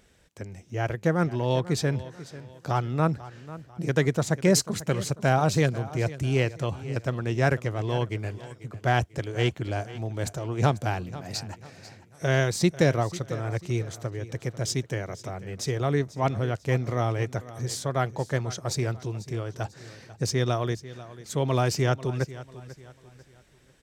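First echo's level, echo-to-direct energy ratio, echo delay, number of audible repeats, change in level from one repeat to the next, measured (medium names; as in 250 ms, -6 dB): -16.5 dB, -16.0 dB, 493 ms, 3, -8.5 dB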